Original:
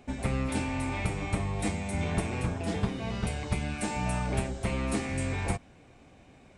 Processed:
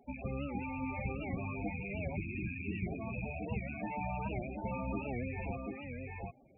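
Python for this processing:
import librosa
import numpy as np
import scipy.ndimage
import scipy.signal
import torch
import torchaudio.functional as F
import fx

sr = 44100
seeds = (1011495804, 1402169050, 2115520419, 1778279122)

p1 = fx.rattle_buzz(x, sr, strikes_db=-34.0, level_db=-24.0)
p2 = p1 + fx.echo_single(p1, sr, ms=736, db=-3.5, dry=0)
p3 = fx.spec_box(p2, sr, start_s=2.16, length_s=0.7, low_hz=420.0, high_hz=1600.0, gain_db=-13)
p4 = scipy.signal.sosfilt(scipy.signal.butter(2, 3100.0, 'lowpass', fs=sr, output='sos'), p3)
p5 = fx.low_shelf(p4, sr, hz=280.0, db=-8.5)
p6 = fx.spec_topn(p5, sr, count=16)
p7 = fx.record_warp(p6, sr, rpm=78.0, depth_cents=160.0)
y = p7 * 10.0 ** (-2.5 / 20.0)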